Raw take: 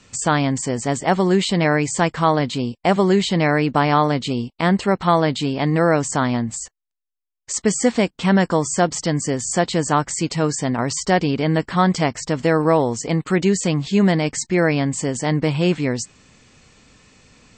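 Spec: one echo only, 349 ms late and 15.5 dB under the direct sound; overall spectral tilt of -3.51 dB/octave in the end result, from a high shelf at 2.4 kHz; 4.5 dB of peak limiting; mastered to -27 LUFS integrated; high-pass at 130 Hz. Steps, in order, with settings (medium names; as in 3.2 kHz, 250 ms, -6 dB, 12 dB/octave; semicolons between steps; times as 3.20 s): high-pass 130 Hz; treble shelf 2.4 kHz +8.5 dB; peak limiter -5.5 dBFS; delay 349 ms -15.5 dB; trim -8.5 dB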